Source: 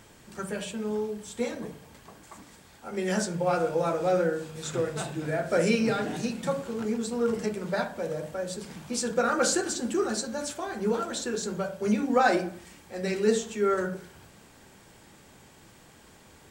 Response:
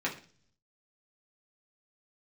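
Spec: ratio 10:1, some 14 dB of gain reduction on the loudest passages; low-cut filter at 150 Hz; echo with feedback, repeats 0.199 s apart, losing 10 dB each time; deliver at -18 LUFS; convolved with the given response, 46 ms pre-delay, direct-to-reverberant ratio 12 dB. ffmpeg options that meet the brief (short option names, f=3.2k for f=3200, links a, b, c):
-filter_complex "[0:a]highpass=150,acompressor=threshold=-32dB:ratio=10,aecho=1:1:199|398|597|796:0.316|0.101|0.0324|0.0104,asplit=2[a][b];[1:a]atrim=start_sample=2205,adelay=46[c];[b][c]afir=irnorm=-1:irlink=0,volume=-19dB[d];[a][d]amix=inputs=2:normalize=0,volume=18dB"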